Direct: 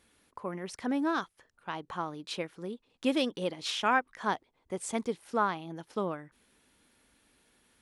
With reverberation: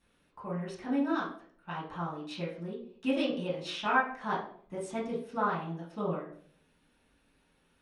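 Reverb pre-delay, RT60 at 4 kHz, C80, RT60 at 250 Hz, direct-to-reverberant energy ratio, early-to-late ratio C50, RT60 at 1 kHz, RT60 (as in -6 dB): 4 ms, 0.40 s, 10.0 dB, 0.65 s, -8.5 dB, 5.5 dB, 0.50 s, 0.55 s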